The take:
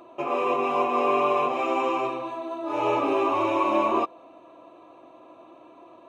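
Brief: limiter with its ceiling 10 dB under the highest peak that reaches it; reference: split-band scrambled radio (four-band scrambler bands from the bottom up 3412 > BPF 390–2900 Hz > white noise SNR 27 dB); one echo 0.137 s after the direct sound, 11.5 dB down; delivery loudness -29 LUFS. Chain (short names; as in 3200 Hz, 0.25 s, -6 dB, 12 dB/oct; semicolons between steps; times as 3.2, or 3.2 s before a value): limiter -21 dBFS; echo 0.137 s -11.5 dB; four-band scrambler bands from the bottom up 3412; BPF 390–2900 Hz; white noise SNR 27 dB; gain +2.5 dB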